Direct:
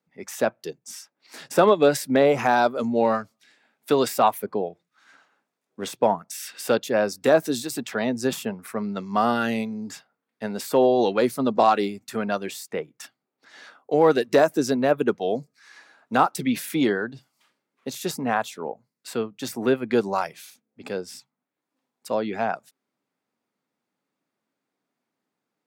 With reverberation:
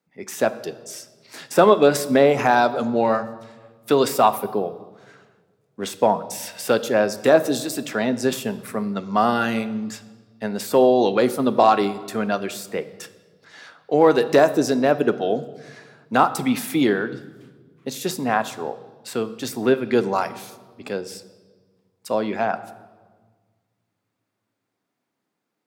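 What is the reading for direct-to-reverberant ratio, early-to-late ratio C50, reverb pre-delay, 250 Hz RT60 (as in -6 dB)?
11.5 dB, 15.0 dB, 3 ms, 2.1 s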